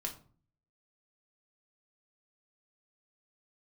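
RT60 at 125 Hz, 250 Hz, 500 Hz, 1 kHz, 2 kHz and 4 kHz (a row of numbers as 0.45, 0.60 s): 0.75, 0.65, 0.45, 0.45, 0.30, 0.25 s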